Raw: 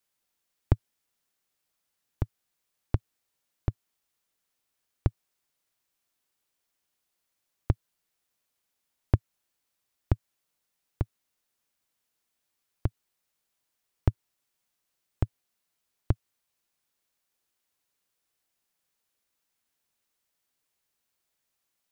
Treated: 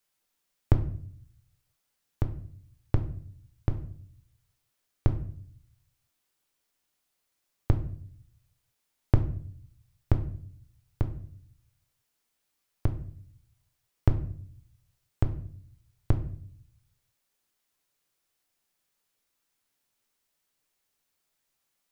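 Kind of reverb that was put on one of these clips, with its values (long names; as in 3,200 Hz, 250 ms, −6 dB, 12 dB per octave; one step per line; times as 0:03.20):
rectangular room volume 71 cubic metres, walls mixed, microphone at 0.36 metres
level +1 dB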